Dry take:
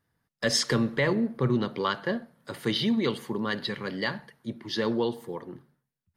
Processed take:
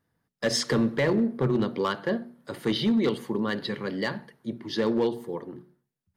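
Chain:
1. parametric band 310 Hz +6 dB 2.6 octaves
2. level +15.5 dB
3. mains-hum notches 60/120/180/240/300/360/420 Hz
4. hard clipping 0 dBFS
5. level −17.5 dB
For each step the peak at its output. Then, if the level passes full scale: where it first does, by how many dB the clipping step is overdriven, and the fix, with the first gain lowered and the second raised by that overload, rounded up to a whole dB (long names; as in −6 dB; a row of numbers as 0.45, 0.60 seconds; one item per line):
−9.0, +6.5, +5.5, 0.0, −17.5 dBFS
step 2, 5.5 dB
step 2 +9.5 dB, step 5 −11.5 dB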